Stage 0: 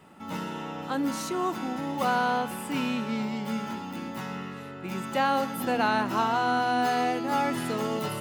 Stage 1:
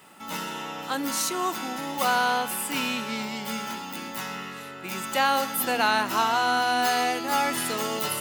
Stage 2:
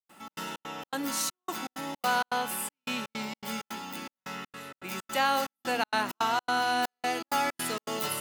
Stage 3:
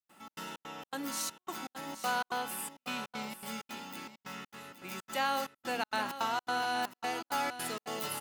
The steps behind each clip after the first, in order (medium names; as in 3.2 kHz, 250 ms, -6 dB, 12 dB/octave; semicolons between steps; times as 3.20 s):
tilt EQ +3 dB/octave; trim +2.5 dB
trance gate ".xx.xx.xx.xxxx." 162 bpm -60 dB; trim -3.5 dB
delay 821 ms -11.5 dB; trim -5.5 dB